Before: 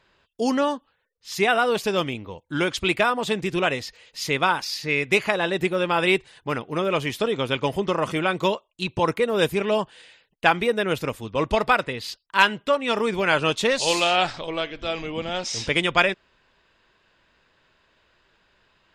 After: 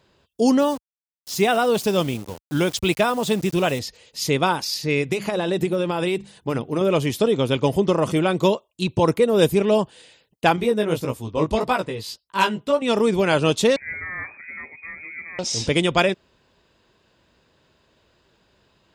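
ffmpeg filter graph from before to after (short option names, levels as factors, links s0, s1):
-filter_complex "[0:a]asettb=1/sr,asplit=3[s0][s1][s2];[s0]atrim=end=0.594[s3];[s1]atrim=start=0.59:end=3.79,asetpts=PTS-STARTPTS,afade=t=in:d=0.004:c=qsin,afade=t=out:st=3.196:d=0.004:c=qsin,equalizer=f=350:w=1.5:g=-3,aeval=exprs='val(0)*gte(abs(val(0)),0.0141)':c=same[s4];[s2]atrim=start=3.786[s5];[s3][s4]acrossfade=d=0.004:c1=hsin:c2=qsin[s6];[s6][s5]acrossfade=d=0.004:c1=qsin:c2=hsin,asettb=1/sr,asplit=3[s7][s8][s9];[s7]atrim=end=5.014[s10];[s8]atrim=start=5.01:end=6.81,asetpts=PTS-STARTPTS,afade=t=in:d=0.004:c=qsin,afade=t=out:st=1.796:d=0.004:c=qsin,bandreject=f=50:t=h:w=6,bandreject=f=100:t=h:w=6,bandreject=f=150:t=h:w=6,bandreject=f=200:t=h:w=6,bandreject=f=250:t=h:w=6,acompressor=threshold=0.0891:ratio=10:attack=3.2:release=140:knee=1:detection=peak[s11];[s9]atrim=start=6.806[s12];[s10][s11]acrossfade=d=0.004:c1=hsin:c2=qsin[s13];[s13][s12]acrossfade=d=0.004:c1=qsin:c2=hsin,asettb=1/sr,asplit=3[s14][s15][s16];[s14]atrim=end=10.564[s17];[s15]atrim=start=10.56:end=12.82,asetpts=PTS-STARTPTS,afade=t=in:d=0.004:c=qsin,afade=t=out:st=2.256:d=0.004:c=qsin,equalizer=f=1000:t=o:w=0.34:g=4,flanger=delay=15.5:depth=3.5:speed=1.7[s18];[s16]atrim=start=12.816[s19];[s17][s18]acrossfade=d=0.004:c1=hsin:c2=qsin[s20];[s20][s19]acrossfade=d=0.004:c1=qsin:c2=hsin,asettb=1/sr,asplit=3[s21][s22][s23];[s21]atrim=end=13.764[s24];[s22]atrim=start=13.76:end=15.39,asetpts=PTS-STARTPTS,afade=t=in:d=0.004:c=qsin,afade=t=out:st=1.626:d=0.004:c=qsin,equalizer=f=1700:t=o:w=2.5:g=-12.5,lowpass=f=2100:t=q:w=0.5098,lowpass=f=2100:t=q:w=0.6013,lowpass=f=2100:t=q:w=0.9,lowpass=f=2100:t=q:w=2.563,afreqshift=-2500[s25];[s23]atrim=start=15.386[s26];[s24][s25]acrossfade=d=0.004:c1=hsin:c2=qsin[s27];[s27][s26]acrossfade=d=0.004:c1=qsin:c2=hsin,highpass=55,equalizer=f=1800:w=0.55:g=-11.5,volume=2.37"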